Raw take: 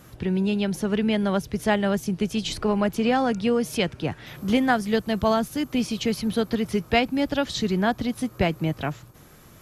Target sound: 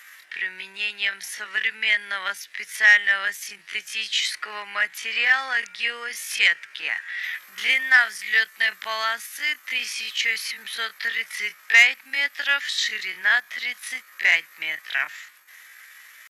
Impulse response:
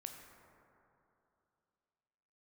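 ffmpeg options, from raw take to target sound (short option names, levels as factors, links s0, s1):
-af "highpass=f=1900:t=q:w=5.6,atempo=0.59,acontrast=71,volume=0.708"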